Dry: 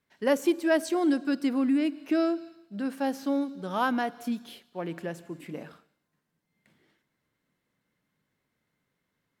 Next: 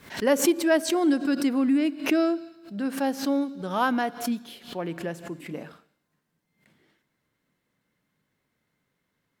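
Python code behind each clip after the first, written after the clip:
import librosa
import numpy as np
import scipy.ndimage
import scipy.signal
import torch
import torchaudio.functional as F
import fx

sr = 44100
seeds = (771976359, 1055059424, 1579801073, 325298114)

y = fx.pre_swell(x, sr, db_per_s=130.0)
y = y * 10.0 ** (2.5 / 20.0)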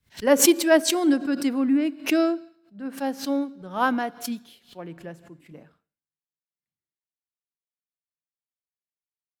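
y = fx.band_widen(x, sr, depth_pct=100)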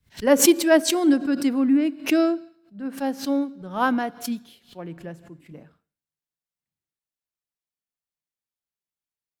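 y = fx.low_shelf(x, sr, hz=230.0, db=5.5)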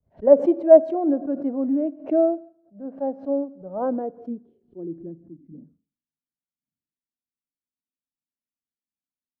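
y = fx.filter_sweep_lowpass(x, sr, from_hz=630.0, to_hz=260.0, start_s=3.6, end_s=5.57, q=4.9)
y = y * 10.0 ** (-6.0 / 20.0)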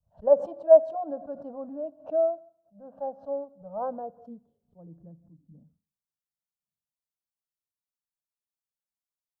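y = fx.peak_eq(x, sr, hz=260.0, db=-9.0, octaves=0.32)
y = fx.fixed_phaser(y, sr, hz=870.0, stages=4)
y = y * 10.0 ** (-2.0 / 20.0)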